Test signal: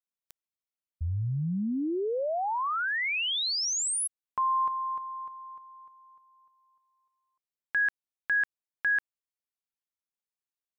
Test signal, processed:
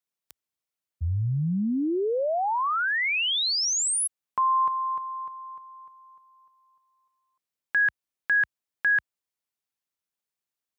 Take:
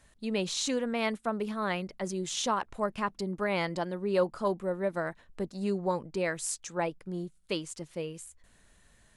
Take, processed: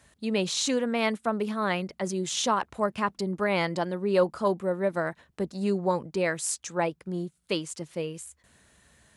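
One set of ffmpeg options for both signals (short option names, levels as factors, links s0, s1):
-af "highpass=f=59:w=0.5412,highpass=f=59:w=1.3066,volume=1.58"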